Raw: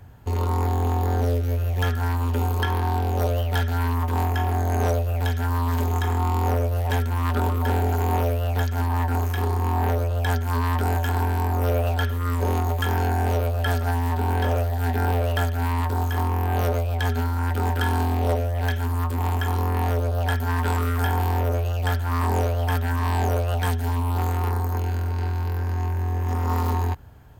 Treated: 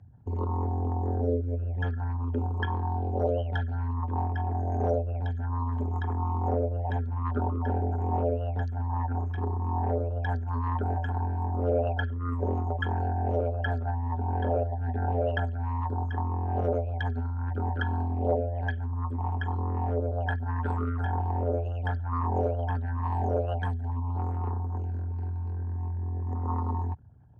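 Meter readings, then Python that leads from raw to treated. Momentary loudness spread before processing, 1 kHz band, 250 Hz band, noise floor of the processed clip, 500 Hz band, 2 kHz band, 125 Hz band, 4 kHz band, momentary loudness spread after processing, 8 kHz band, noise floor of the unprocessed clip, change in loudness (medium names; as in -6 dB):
2 LU, -6.5 dB, -5.5 dB, -32 dBFS, -3.5 dB, -8.0 dB, -6.5 dB, -14.5 dB, 4 LU, under -30 dB, -25 dBFS, -6.0 dB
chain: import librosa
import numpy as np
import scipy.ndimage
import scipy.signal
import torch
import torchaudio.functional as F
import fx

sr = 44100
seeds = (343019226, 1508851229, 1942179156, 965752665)

y = fx.envelope_sharpen(x, sr, power=2.0)
y = fx.bandpass_edges(y, sr, low_hz=110.0, high_hz=5700.0)
y = F.gain(torch.from_numpy(y), -1.5).numpy()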